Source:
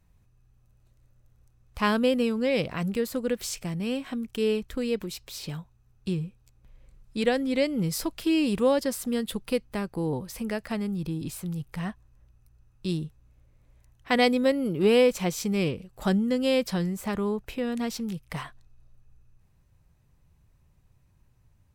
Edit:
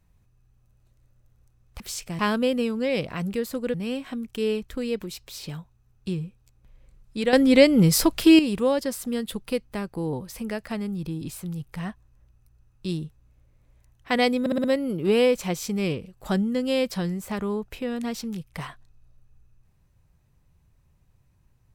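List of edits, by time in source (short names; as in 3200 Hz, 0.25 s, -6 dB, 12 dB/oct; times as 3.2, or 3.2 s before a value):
3.35–3.74 move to 1.8
7.33–8.39 gain +10 dB
14.4 stutter 0.06 s, 5 plays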